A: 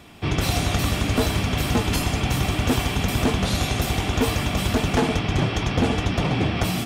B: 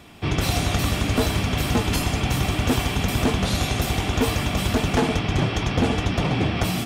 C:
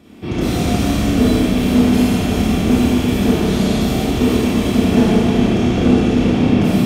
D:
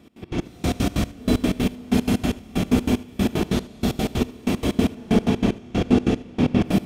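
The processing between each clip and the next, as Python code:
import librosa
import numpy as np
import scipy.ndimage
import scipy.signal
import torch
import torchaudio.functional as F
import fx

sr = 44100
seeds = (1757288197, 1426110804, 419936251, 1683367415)

y1 = x
y2 = fx.curve_eq(y1, sr, hz=(140.0, 200.0, 530.0, 850.0), db=(0, 10, 4, -3))
y2 = fx.rev_schroeder(y2, sr, rt60_s=2.5, comb_ms=25, drr_db=-8.0)
y2 = y2 * librosa.db_to_amplitude(-5.0)
y3 = fx.step_gate(y2, sr, bpm=188, pattern='x.x.x...', floor_db=-24.0, edge_ms=4.5)
y3 = y3 + 10.0 ** (-19.5 / 20.0) * np.pad(y3, (int(77 * sr / 1000.0), 0))[:len(y3)]
y3 = y3 * librosa.db_to_amplitude(-3.5)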